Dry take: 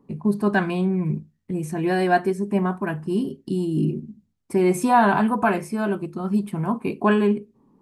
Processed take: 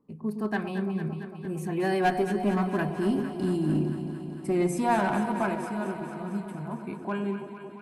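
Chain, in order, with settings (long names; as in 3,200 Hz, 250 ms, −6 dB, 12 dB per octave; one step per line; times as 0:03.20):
source passing by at 0:03.02, 14 m/s, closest 18 metres
asymmetric clip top −19 dBFS
delay that swaps between a low-pass and a high-pass 113 ms, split 860 Hz, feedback 85%, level −8 dB
level −2.5 dB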